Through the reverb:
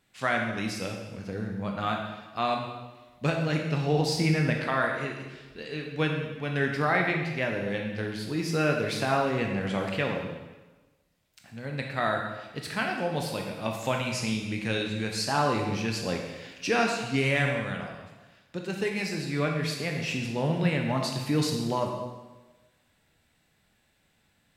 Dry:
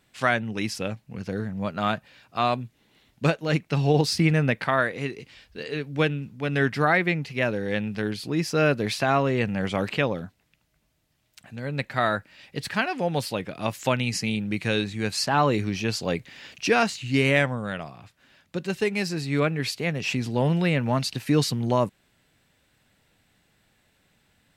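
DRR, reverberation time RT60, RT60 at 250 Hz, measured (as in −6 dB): 1.0 dB, 1.2 s, 1.2 s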